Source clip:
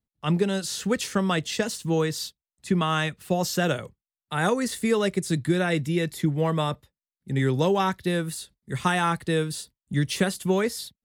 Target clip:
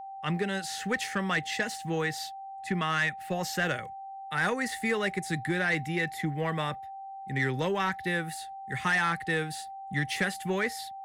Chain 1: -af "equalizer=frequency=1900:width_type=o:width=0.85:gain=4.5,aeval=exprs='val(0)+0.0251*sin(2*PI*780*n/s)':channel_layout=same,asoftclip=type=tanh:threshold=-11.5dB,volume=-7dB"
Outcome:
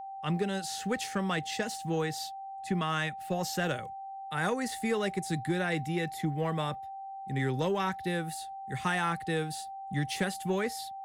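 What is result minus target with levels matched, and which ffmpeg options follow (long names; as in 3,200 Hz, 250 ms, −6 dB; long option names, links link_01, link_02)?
2,000 Hz band −4.5 dB
-af "equalizer=frequency=1900:width_type=o:width=0.85:gain=14,aeval=exprs='val(0)+0.0251*sin(2*PI*780*n/s)':channel_layout=same,asoftclip=type=tanh:threshold=-11.5dB,volume=-7dB"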